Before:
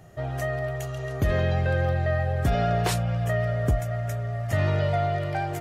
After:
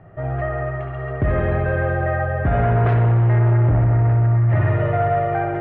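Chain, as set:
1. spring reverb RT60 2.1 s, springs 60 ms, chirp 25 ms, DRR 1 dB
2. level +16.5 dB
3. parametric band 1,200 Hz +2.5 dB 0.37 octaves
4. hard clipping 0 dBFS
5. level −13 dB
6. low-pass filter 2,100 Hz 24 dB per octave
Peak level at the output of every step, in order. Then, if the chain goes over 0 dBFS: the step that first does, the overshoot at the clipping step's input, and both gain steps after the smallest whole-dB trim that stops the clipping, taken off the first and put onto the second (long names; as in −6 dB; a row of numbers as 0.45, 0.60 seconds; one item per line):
−8.0, +8.5, +8.5, 0.0, −13.0, −12.0 dBFS
step 2, 8.5 dB
step 2 +7.5 dB, step 5 −4 dB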